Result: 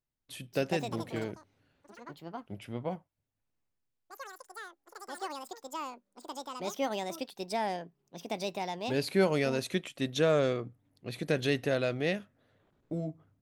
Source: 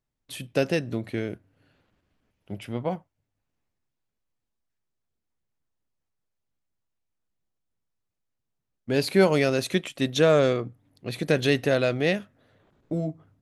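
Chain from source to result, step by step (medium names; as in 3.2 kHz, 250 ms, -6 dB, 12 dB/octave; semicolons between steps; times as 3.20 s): ever faster or slower copies 320 ms, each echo +6 st, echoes 3, each echo -6 dB; trim -7 dB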